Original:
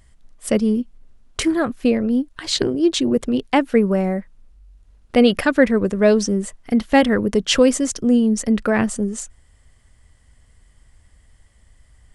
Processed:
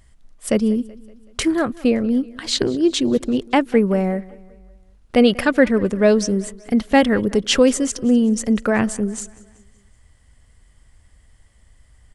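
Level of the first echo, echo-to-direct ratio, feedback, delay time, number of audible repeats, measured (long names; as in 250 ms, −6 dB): −22.0 dB, −20.5 dB, 51%, 189 ms, 3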